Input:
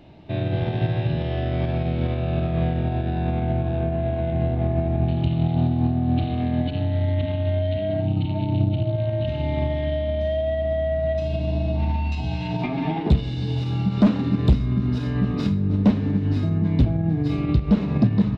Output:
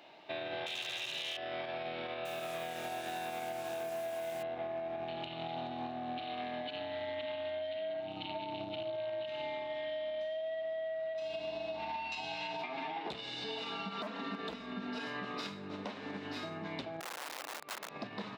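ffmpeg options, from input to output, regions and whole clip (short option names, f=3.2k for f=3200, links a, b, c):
-filter_complex "[0:a]asettb=1/sr,asplit=3[a][b][c];[a]atrim=end=0.664[d];[b]atrim=start=0.66:end=1.37,asetpts=PTS-STARTPTS,afade=t=in:d=0.004:c=qsin,afade=t=out:st=0.706:d=0.004:c=qsin,highshelf=f=1.9k:t=q:w=1.5:g=13.5,asoftclip=type=hard:threshold=-21dB[e];[c]atrim=start=1.366[f];[d][e]acrossfade=d=0.004:c1=hsin:c2=qsin[g];[g][f]acrossfade=d=0.004:c1=qsin:c2=hsin,asettb=1/sr,asplit=3[h][i][j];[h]atrim=end=2.254[k];[i]atrim=start=2.25:end=4.43,asetpts=PTS-STARTPTS,afade=t=in:d=0.004:c=qsin,afade=t=out:st=2.176:d=0.004:c=qsin,highpass=49,highshelf=f=2.7k:g=5,acrusher=bits=6:mix=0:aa=0.5[l];[j]atrim=start=4.426[m];[k][l]acrossfade=d=0.004:c1=hsin:c2=qsin[n];[n][m]acrossfade=d=0.004:c1=qsin:c2=hsin,asettb=1/sr,asplit=3[o][p][q];[o]atrim=end=13.444[r];[p]atrim=start=13.44:end=15.07,asetpts=PTS-STARTPTS,afade=t=in:d=0.004:c=qsin,afade=t=out:st=1.626:d=0.004:c=qsin,lowpass=f=3.1k:p=1,aecho=1:1:4.4:0.99,atrim=end_sample=71883,volume=7.5dB,asoftclip=hard,volume=-7.5dB[s];[q]atrim=start=15.066[t];[r][s]acrossfade=d=0.004:c1=hsin:c2=qsin[u];[u][t]acrossfade=d=0.004:c1=qsin:c2=hsin,asettb=1/sr,asplit=3[v][w][x];[v]atrim=end=17.004[y];[w]atrim=start=17:end=17.89,asetpts=PTS-STARTPTS,afade=t=in:d=0.004:c=qsin,afade=t=out:st=0.886:d=0.004:c=qsin,highshelf=f=3.5k:g=-11,aeval=exprs='(mod(9.44*val(0)+1,2)-1)/9.44':c=same[z];[x]atrim=start=17.886[aa];[y][z]acrossfade=d=0.004:c1=hsin:c2=qsin[ab];[ab][aa]acrossfade=d=0.004:c1=qsin:c2=hsin,highpass=760,alimiter=level_in=3.5dB:limit=-24dB:level=0:latency=1:release=286,volume=-3.5dB,acompressor=threshold=-37dB:ratio=6,volume=1dB"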